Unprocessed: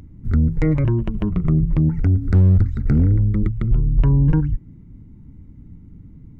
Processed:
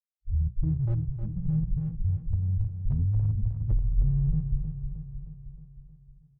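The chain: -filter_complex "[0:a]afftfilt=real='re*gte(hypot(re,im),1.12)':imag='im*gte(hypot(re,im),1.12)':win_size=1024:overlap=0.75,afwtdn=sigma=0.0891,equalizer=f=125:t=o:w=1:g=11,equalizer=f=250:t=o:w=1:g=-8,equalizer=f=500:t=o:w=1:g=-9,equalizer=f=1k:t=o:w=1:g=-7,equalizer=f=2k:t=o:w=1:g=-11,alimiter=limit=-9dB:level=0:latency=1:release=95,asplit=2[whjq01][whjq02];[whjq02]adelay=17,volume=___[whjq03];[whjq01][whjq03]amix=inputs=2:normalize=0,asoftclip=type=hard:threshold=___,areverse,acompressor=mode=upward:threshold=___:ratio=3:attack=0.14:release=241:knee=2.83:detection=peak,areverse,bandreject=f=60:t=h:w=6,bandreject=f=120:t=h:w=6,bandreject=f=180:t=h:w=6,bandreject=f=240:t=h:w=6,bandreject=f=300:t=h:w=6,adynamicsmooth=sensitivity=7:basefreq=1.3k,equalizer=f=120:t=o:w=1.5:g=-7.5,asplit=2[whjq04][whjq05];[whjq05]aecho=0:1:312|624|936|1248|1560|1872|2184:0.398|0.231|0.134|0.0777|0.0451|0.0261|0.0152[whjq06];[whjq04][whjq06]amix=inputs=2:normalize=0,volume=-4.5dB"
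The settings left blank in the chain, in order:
-10.5dB, -8.5dB, -28dB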